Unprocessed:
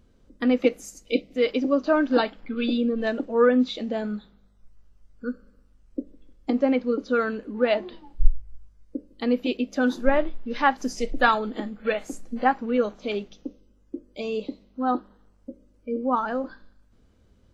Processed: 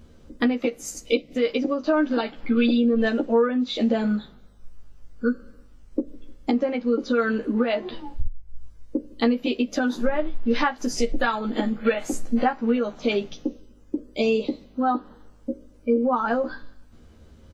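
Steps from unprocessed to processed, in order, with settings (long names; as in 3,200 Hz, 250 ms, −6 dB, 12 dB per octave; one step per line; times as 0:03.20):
downward compressor 16 to 1, threshold −28 dBFS, peak gain reduction 22.5 dB
double-tracking delay 13 ms −3 dB
level +8 dB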